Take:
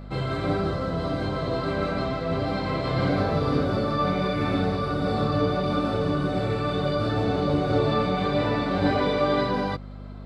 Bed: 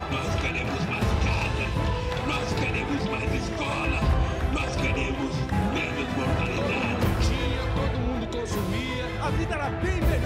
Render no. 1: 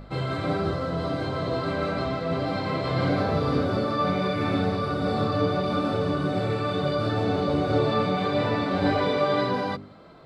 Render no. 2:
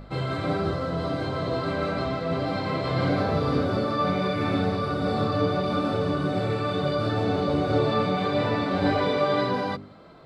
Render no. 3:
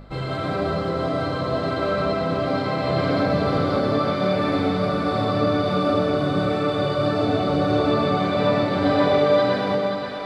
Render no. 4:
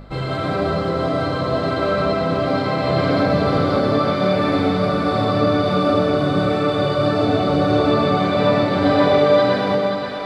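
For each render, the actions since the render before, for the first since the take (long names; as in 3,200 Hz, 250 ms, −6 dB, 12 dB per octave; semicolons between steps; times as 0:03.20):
hum removal 50 Hz, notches 8
no processing that can be heard
feedback echo with a high-pass in the loop 530 ms, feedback 67%, high-pass 420 Hz, level −7 dB; comb and all-pass reverb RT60 0.78 s, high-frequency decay 0.3×, pre-delay 75 ms, DRR 0.5 dB
level +3.5 dB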